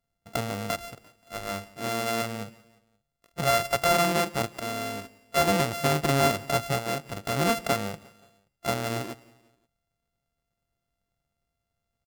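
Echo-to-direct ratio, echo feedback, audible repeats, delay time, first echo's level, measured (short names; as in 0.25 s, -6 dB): -21.5 dB, 48%, 2, 0.176 s, -22.5 dB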